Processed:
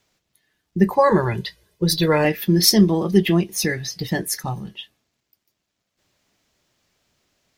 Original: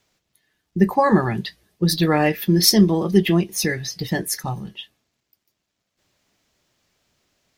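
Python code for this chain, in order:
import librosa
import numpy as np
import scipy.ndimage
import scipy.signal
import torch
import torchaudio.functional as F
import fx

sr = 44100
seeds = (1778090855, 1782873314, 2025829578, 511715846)

y = fx.comb(x, sr, ms=2.0, depth=0.63, at=(0.93, 2.25))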